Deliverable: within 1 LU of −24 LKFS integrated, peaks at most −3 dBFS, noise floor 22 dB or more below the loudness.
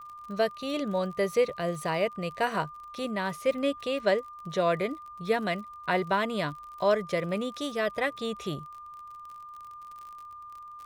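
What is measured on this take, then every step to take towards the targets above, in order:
crackle rate 46 per second; interfering tone 1,200 Hz; level of the tone −42 dBFS; integrated loudness −30.0 LKFS; sample peak −12.0 dBFS; target loudness −24.0 LKFS
→ click removal
notch filter 1,200 Hz, Q 30
level +6 dB

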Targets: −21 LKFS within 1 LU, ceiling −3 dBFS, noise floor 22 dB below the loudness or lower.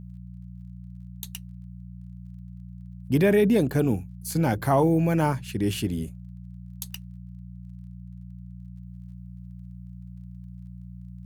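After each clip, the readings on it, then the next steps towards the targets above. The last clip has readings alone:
crackle rate 20 per second; mains hum 60 Hz; hum harmonics up to 180 Hz; level of the hum −39 dBFS; integrated loudness −24.5 LKFS; sample peak −9.5 dBFS; target loudness −21.0 LKFS
→ click removal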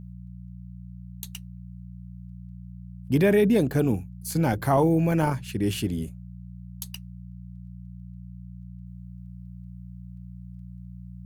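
crackle rate 0.53 per second; mains hum 60 Hz; hum harmonics up to 180 Hz; level of the hum −39 dBFS
→ hum removal 60 Hz, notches 3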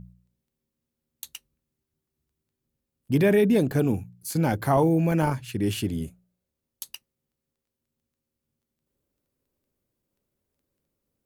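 mains hum none found; integrated loudness −24.0 LKFS; sample peak −9.5 dBFS; target loudness −21.0 LKFS
→ level +3 dB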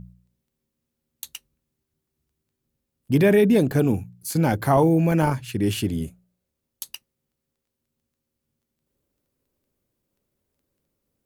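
integrated loudness −21.0 LKFS; sample peak −6.5 dBFS; background noise floor −82 dBFS

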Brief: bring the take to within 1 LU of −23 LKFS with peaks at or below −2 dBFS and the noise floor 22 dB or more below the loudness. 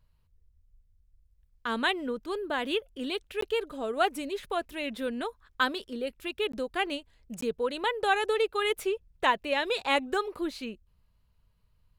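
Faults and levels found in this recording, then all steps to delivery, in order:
number of dropouts 3; longest dropout 14 ms; integrated loudness −30.5 LKFS; sample peak −10.5 dBFS; target loudness −23.0 LKFS
→ repair the gap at 0:03.41/0:06.52/0:07.41, 14 ms
level +7.5 dB

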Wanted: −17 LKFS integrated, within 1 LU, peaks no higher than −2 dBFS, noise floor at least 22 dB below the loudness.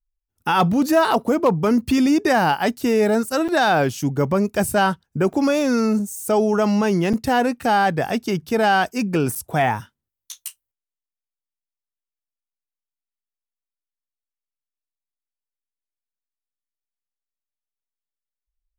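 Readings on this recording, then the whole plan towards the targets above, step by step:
number of dropouts 4; longest dropout 6.7 ms; integrated loudness −19.5 LKFS; sample peak −7.0 dBFS; target loudness −17.0 LKFS
→ repair the gap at 0:03.48/0:05.33/0:07.13/0:09.35, 6.7 ms
level +2.5 dB

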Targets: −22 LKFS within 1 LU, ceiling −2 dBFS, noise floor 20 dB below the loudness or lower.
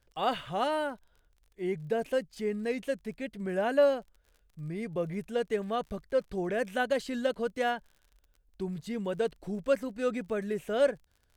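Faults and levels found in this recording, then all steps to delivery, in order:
crackle rate 37 per second; integrated loudness −32.0 LKFS; sample peak −14.0 dBFS; target loudness −22.0 LKFS
→ click removal
level +10 dB

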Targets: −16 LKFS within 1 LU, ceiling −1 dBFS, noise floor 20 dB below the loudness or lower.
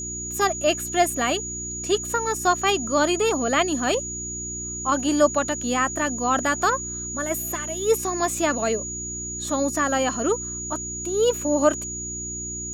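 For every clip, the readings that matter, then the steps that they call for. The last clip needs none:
mains hum 60 Hz; hum harmonics up to 360 Hz; level of the hum −35 dBFS; interfering tone 6,800 Hz; level of the tone −30 dBFS; integrated loudness −23.5 LKFS; sample peak −6.0 dBFS; target loudness −16.0 LKFS
→ hum removal 60 Hz, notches 6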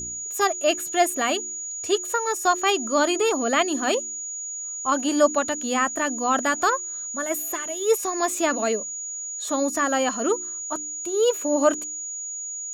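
mains hum none found; interfering tone 6,800 Hz; level of the tone −30 dBFS
→ notch filter 6,800 Hz, Q 30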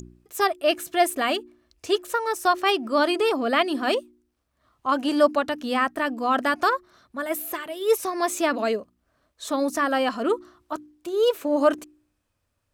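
interfering tone none found; integrated loudness −24.0 LKFS; sample peak −7.5 dBFS; target loudness −16.0 LKFS
→ level +8 dB
brickwall limiter −1 dBFS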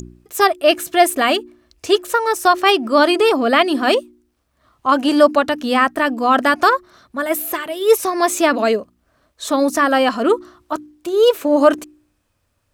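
integrated loudness −16.0 LKFS; sample peak −1.0 dBFS; background noise floor −67 dBFS

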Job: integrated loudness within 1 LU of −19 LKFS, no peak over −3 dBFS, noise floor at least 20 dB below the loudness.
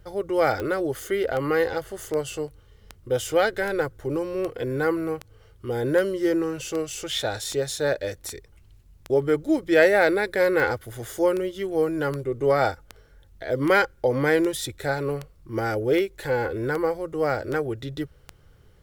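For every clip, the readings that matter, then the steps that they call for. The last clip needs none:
number of clicks 24; integrated loudness −24.5 LKFS; sample peak −6.5 dBFS; target loudness −19.0 LKFS
→ click removal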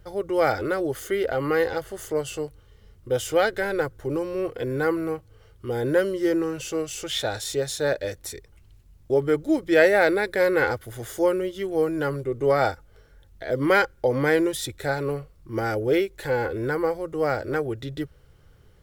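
number of clicks 0; integrated loudness −24.5 LKFS; sample peak −6.5 dBFS; target loudness −19.0 LKFS
→ level +5.5 dB
brickwall limiter −3 dBFS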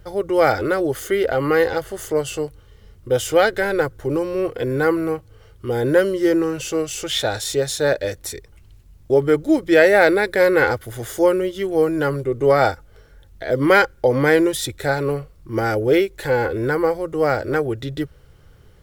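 integrated loudness −19.5 LKFS; sample peak −3.0 dBFS; background noise floor −49 dBFS

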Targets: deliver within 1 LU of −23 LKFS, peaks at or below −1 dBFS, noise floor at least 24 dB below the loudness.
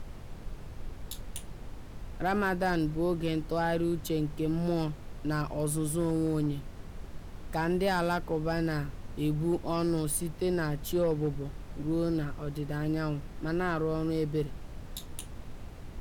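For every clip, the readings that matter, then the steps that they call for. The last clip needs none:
share of clipped samples 0.3%; peaks flattened at −21.0 dBFS; background noise floor −44 dBFS; target noise floor −56 dBFS; integrated loudness −31.5 LKFS; sample peak −21.0 dBFS; target loudness −23.0 LKFS
→ clipped peaks rebuilt −21 dBFS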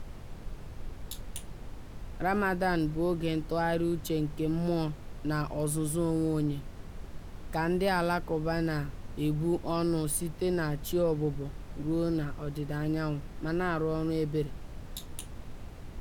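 share of clipped samples 0.0%; background noise floor −44 dBFS; target noise floor −56 dBFS
→ noise reduction from a noise print 12 dB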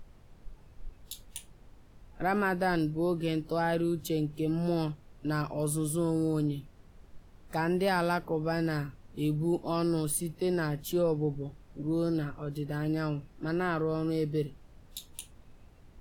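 background noise floor −56 dBFS; integrated loudness −31.0 LKFS; sample peak −16.0 dBFS; target loudness −23.0 LKFS
→ level +8 dB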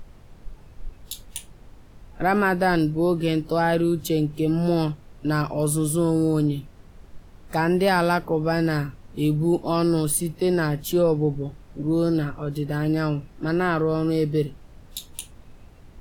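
integrated loudness −23.0 LKFS; sample peak −8.0 dBFS; background noise floor −48 dBFS

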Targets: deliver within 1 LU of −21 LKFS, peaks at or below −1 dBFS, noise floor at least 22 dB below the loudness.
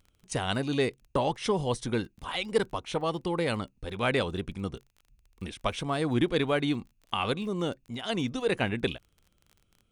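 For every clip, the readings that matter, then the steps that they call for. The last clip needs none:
crackle rate 24 per second; integrated loudness −30.5 LKFS; sample peak −12.5 dBFS; target loudness −21.0 LKFS
→ click removal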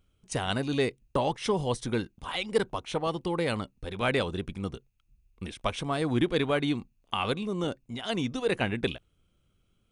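crackle rate 0 per second; integrated loudness −30.5 LKFS; sample peak −12.5 dBFS; target loudness −21.0 LKFS
→ level +9.5 dB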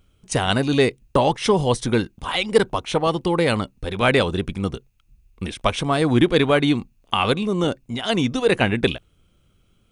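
integrated loudness −21.0 LKFS; sample peak −3.0 dBFS; background noise floor −62 dBFS

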